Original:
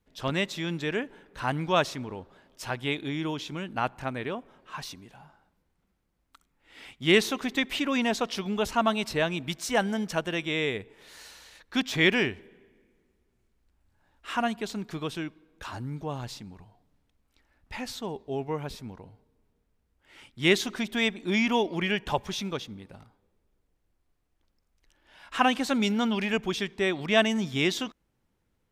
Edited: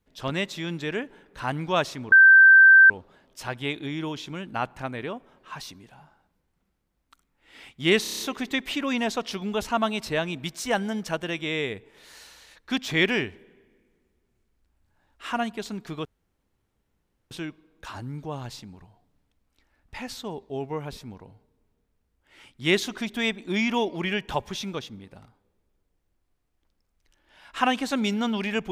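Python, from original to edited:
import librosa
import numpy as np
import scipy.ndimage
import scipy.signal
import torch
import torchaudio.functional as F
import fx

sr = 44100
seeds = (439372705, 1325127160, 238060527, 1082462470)

y = fx.edit(x, sr, fx.insert_tone(at_s=2.12, length_s=0.78, hz=1560.0, db=-9.0),
    fx.stutter(start_s=7.24, slice_s=0.03, count=7),
    fx.insert_room_tone(at_s=15.09, length_s=1.26), tone=tone)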